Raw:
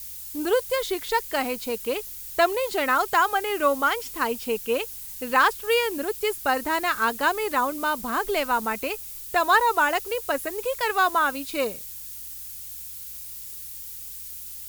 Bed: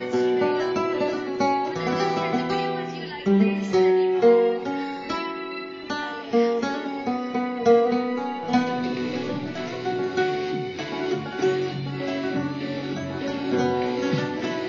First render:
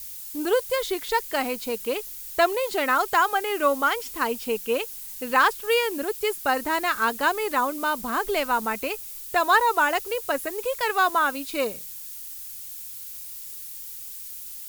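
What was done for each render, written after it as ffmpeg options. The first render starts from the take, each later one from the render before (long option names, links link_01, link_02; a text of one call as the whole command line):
ffmpeg -i in.wav -af "bandreject=frequency=60:width_type=h:width=4,bandreject=frequency=120:width_type=h:width=4,bandreject=frequency=180:width_type=h:width=4" out.wav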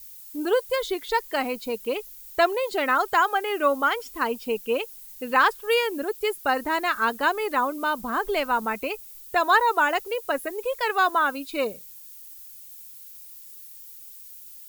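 ffmpeg -i in.wav -af "afftdn=noise_reduction=9:noise_floor=-38" out.wav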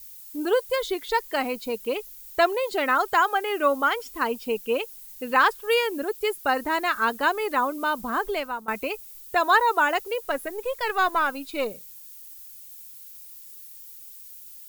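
ffmpeg -i in.wav -filter_complex "[0:a]asettb=1/sr,asplit=3[link_01][link_02][link_03];[link_01]atrim=end=10.224[link_04];[link_02]atrim=start=10.22:end=11.71,asetpts=PTS-STARTPTS,afade=type=in:duration=0.004:curve=qsin,afade=type=out:start_time=1.486:duration=0.004:curve=qsin,aeval=exprs='if(lt(val(0),0),0.708*val(0),val(0))':channel_layout=same[link_05];[link_03]atrim=start=11.706[link_06];[link_04][link_05]acrossfade=duration=0.004:curve1=hsin:curve2=qsin[link_07];[link_07][link_06]acrossfade=duration=0.004:curve1=qsin:curve2=hsin,asplit=2[link_08][link_09];[link_08]atrim=end=8.68,asetpts=PTS-STARTPTS,afade=type=out:start_time=8.2:duration=0.48:silence=0.158489[link_10];[link_09]atrim=start=8.68,asetpts=PTS-STARTPTS,afade=type=in:duration=0.004:curve=hsin:silence=0.158489[link_11];[link_10][link_11]concat=n=2:v=0:a=1" out.wav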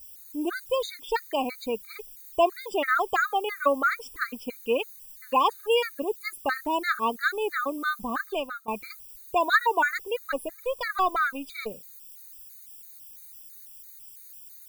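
ffmpeg -i in.wav -af "afftfilt=real='re*gt(sin(2*PI*3*pts/sr)*(1-2*mod(floor(b*sr/1024/1200),2)),0)':imag='im*gt(sin(2*PI*3*pts/sr)*(1-2*mod(floor(b*sr/1024/1200),2)),0)':win_size=1024:overlap=0.75" out.wav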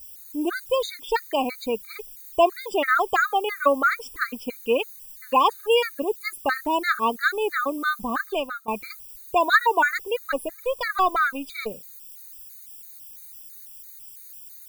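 ffmpeg -i in.wav -af "volume=3.5dB" out.wav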